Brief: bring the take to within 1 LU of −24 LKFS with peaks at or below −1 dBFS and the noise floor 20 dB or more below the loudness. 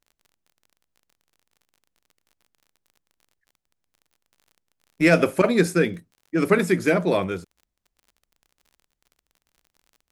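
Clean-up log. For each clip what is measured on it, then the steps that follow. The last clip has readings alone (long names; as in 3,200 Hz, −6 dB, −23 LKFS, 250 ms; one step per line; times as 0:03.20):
crackle rate 37 per second; integrated loudness −21.5 LKFS; sample peak −4.5 dBFS; target loudness −24.0 LKFS
→ click removal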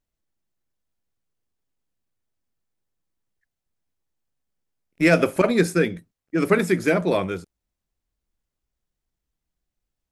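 crackle rate 0 per second; integrated loudness −21.0 LKFS; sample peak −4.5 dBFS; target loudness −24.0 LKFS
→ level −3 dB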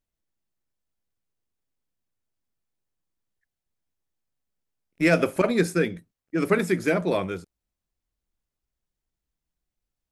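integrated loudness −24.0 LKFS; sample peak −7.5 dBFS; background noise floor −87 dBFS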